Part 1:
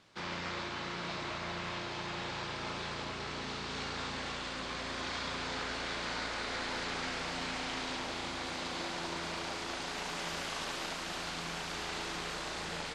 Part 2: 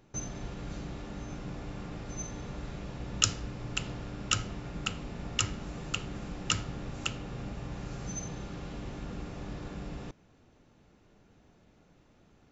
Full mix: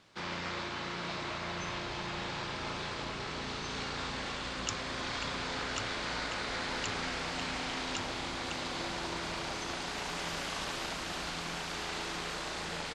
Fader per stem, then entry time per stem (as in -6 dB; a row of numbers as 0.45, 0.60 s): +1.0, -12.0 dB; 0.00, 1.45 s